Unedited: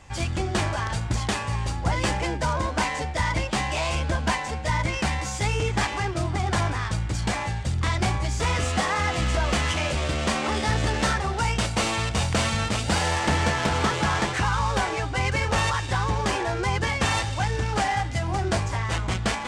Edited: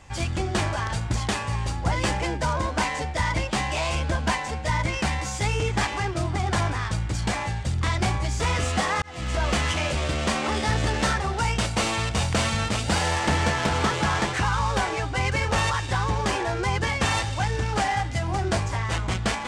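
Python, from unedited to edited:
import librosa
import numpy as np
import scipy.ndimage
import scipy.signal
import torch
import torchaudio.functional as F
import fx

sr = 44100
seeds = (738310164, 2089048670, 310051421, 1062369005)

y = fx.edit(x, sr, fx.fade_in_span(start_s=9.02, length_s=0.42), tone=tone)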